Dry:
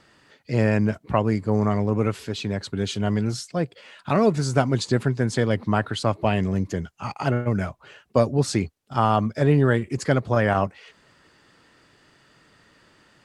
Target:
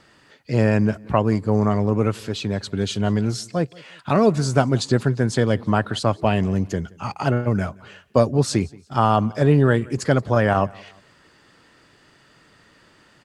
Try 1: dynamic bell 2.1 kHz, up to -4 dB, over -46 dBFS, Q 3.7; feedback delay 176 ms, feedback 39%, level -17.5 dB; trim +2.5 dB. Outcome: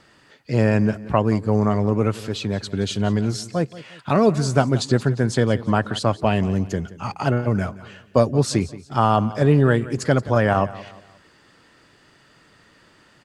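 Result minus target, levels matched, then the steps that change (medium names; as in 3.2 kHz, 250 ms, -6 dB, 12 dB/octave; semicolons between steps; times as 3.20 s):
echo-to-direct +7 dB
change: feedback delay 176 ms, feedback 39%, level -24.5 dB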